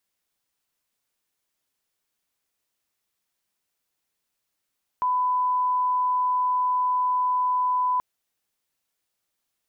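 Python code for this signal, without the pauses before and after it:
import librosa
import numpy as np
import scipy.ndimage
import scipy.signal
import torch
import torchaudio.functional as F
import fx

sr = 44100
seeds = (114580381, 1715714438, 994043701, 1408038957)

y = fx.lineup_tone(sr, length_s=2.98, level_db=-20.0)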